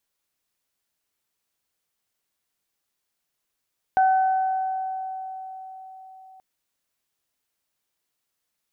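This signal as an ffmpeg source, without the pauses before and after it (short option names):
-f lavfi -i "aevalsrc='0.188*pow(10,-3*t/4.62)*sin(2*PI*758*t)+0.0447*pow(10,-3*t/2.11)*sin(2*PI*1516*t)':d=2.43:s=44100"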